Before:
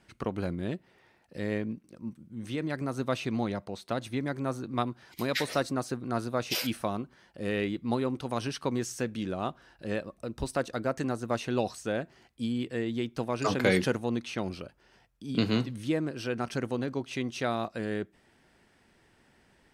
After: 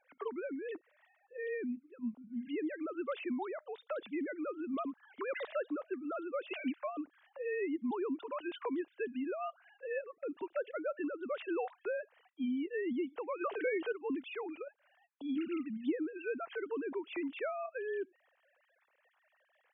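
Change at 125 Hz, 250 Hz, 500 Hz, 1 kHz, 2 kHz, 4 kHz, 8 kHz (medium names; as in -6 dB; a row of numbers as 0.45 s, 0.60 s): under -30 dB, -6.5 dB, -5.0 dB, -8.0 dB, -7.0 dB, -16.0 dB, under -35 dB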